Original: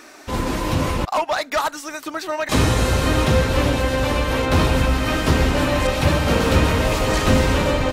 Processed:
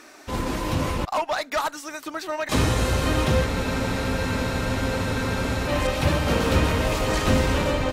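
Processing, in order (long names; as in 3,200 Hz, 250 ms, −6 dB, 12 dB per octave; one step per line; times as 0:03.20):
harmonic generator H 6 −34 dB, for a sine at −4.5 dBFS
frozen spectrum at 0:03.48, 2.20 s
level −4 dB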